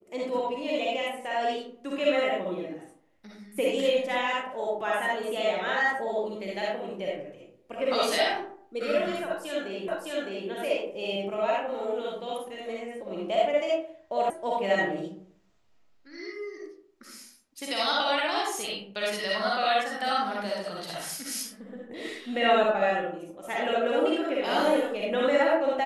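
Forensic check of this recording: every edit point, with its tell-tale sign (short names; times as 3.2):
9.88 repeat of the last 0.61 s
14.3 sound cut off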